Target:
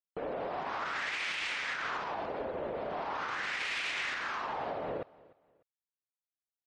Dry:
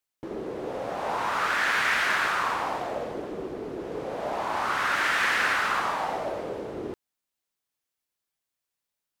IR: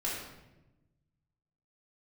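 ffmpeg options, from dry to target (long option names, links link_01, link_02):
-filter_complex "[0:a]aemphasis=mode=reproduction:type=75fm,acompressor=threshold=-28dB:ratio=6,afftdn=noise_reduction=23:noise_floor=-58,alimiter=level_in=4.5dB:limit=-24dB:level=0:latency=1:release=131,volume=-4.5dB,highshelf=frequency=3200:gain=10.5,asplit=2[link_01][link_02];[link_02]aecho=0:1:412|824:0.075|0.0225[link_03];[link_01][link_03]amix=inputs=2:normalize=0,asetrate=60858,aresample=44100"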